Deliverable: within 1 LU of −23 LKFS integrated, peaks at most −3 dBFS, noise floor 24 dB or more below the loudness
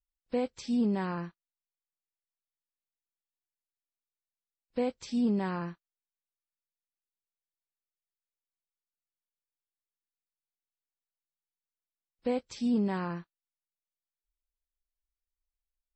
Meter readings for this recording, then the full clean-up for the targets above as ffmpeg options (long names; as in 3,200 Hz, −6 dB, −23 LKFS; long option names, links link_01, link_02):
integrated loudness −32.0 LKFS; sample peak −19.5 dBFS; target loudness −23.0 LKFS
→ -af "volume=9dB"